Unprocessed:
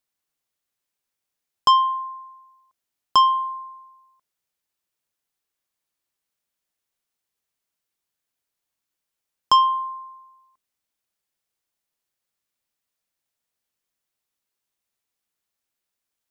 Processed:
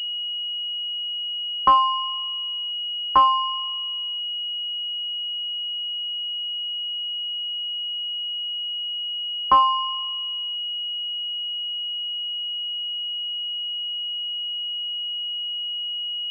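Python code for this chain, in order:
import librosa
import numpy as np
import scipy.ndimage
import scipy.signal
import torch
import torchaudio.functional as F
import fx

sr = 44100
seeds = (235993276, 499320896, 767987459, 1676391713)

y = scipy.signal.sosfilt(scipy.signal.butter(4, 760.0, 'highpass', fs=sr, output='sos'), x)
y = fx.pwm(y, sr, carrier_hz=2900.0)
y = y * 10.0 ** (2.5 / 20.0)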